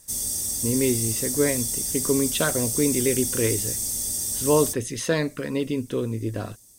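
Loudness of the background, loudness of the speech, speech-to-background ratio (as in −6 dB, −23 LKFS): −24.5 LKFS, −26.0 LKFS, −1.5 dB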